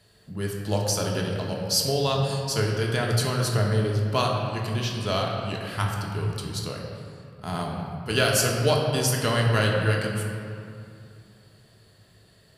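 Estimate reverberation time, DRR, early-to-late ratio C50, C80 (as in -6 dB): 2.5 s, -1.5 dB, 2.0 dB, 3.0 dB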